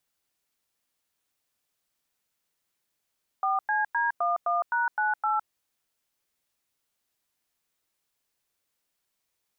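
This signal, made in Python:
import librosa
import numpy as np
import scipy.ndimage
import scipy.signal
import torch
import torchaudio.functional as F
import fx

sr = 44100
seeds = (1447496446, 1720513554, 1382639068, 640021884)

y = fx.dtmf(sr, digits='4CD11#98', tone_ms=160, gap_ms=98, level_db=-25.5)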